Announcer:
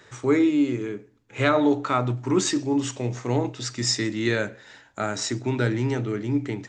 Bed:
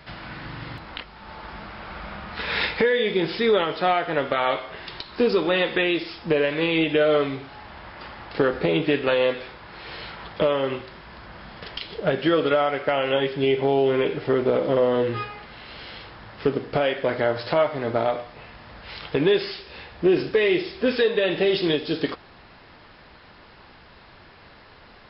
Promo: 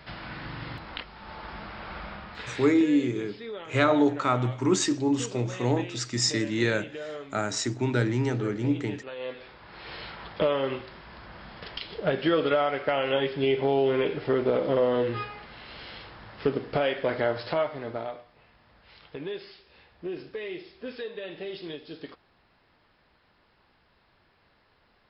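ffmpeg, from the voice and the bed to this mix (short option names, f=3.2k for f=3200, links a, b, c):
-filter_complex "[0:a]adelay=2350,volume=-1.5dB[a];[1:a]volume=13dB,afade=t=out:st=1.97:d=0.69:silence=0.149624,afade=t=in:st=9.15:d=0.74:silence=0.177828,afade=t=out:st=17.23:d=1.01:silence=0.237137[b];[a][b]amix=inputs=2:normalize=0"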